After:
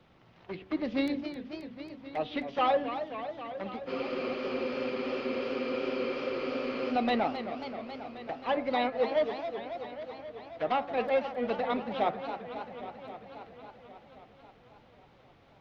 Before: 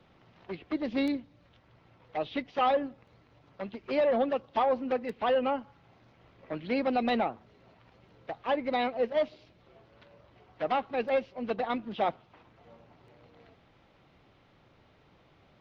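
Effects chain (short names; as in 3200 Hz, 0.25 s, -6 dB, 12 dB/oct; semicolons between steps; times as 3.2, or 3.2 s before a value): de-hum 94.57 Hz, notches 21; spectral freeze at 3.89, 3.01 s; warbling echo 0.269 s, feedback 76%, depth 171 cents, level -10 dB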